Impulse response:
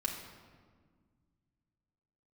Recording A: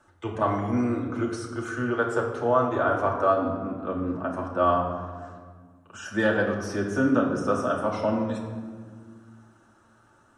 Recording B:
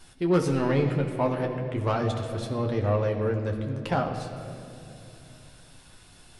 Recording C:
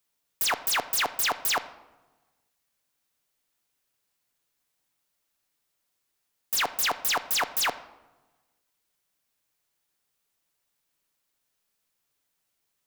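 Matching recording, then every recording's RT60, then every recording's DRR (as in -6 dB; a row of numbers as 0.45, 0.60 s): A; 1.7, 2.7, 1.2 s; -2.0, 1.5, 11.0 dB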